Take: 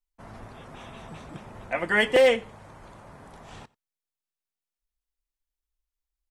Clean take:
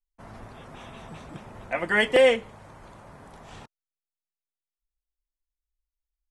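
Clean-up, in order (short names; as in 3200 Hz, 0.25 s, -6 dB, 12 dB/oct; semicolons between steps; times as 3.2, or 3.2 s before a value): clip repair -12 dBFS; inverse comb 89 ms -24 dB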